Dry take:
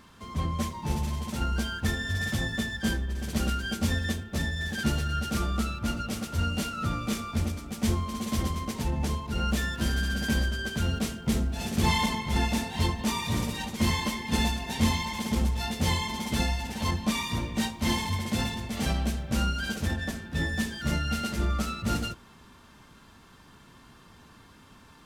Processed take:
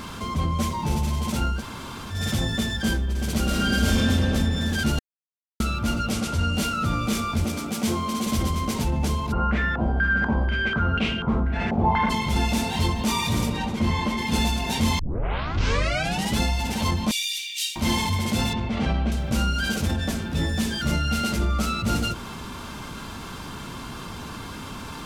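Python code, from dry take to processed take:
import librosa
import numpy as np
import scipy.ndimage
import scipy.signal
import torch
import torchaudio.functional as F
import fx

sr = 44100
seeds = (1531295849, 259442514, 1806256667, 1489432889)

y = fx.reverb_throw(x, sr, start_s=3.45, length_s=0.66, rt60_s=2.4, drr_db=-6.5)
y = fx.lowpass(y, sr, hz=11000.0, slope=12, at=(6.13, 6.56))
y = fx.highpass(y, sr, hz=160.0, slope=12, at=(7.45, 8.27))
y = fx.filter_held_lowpass(y, sr, hz=4.1, low_hz=780.0, high_hz=2700.0, at=(9.31, 12.09), fade=0.02)
y = fx.lowpass(y, sr, hz=1700.0, slope=6, at=(13.48, 14.17), fade=0.02)
y = fx.steep_highpass(y, sr, hz=2600.0, slope=36, at=(17.11, 17.76))
y = fx.lowpass(y, sr, hz=2800.0, slope=12, at=(18.53, 19.12))
y = fx.edit(y, sr, fx.room_tone_fill(start_s=1.55, length_s=0.63, crossfade_s=0.16),
    fx.silence(start_s=4.99, length_s=0.61),
    fx.tape_start(start_s=14.99, length_s=1.4), tone=tone)
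y = fx.notch(y, sr, hz=1800.0, q=11.0)
y = fx.env_flatten(y, sr, amount_pct=50)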